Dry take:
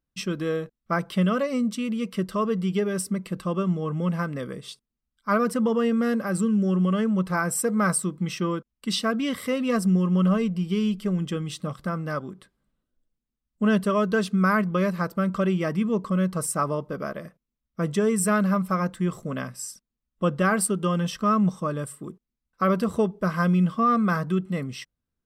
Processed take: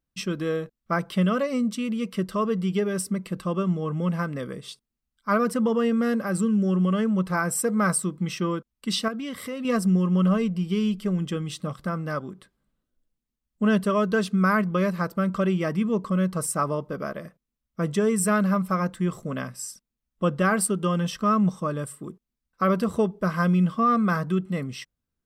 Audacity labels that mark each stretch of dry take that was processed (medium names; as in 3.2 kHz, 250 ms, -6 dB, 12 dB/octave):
9.080000	9.650000	compression 2:1, threshold -34 dBFS